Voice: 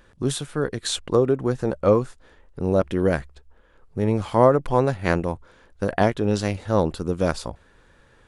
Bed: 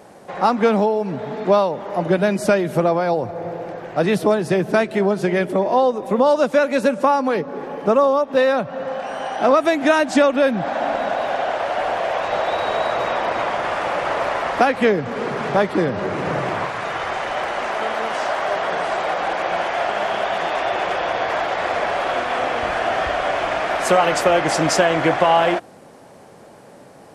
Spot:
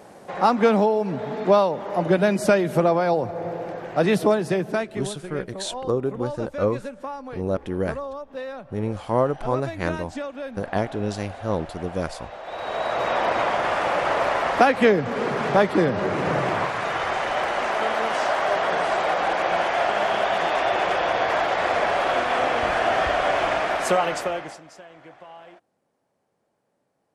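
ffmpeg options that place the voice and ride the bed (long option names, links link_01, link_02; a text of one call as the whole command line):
ffmpeg -i stem1.wav -i stem2.wav -filter_complex "[0:a]adelay=4750,volume=-5dB[link_01];[1:a]volume=15dB,afade=type=out:start_time=4.22:duration=0.91:silence=0.16788,afade=type=in:start_time=12.42:duration=0.8:silence=0.149624,afade=type=out:start_time=23.47:duration=1.14:silence=0.0375837[link_02];[link_01][link_02]amix=inputs=2:normalize=0" out.wav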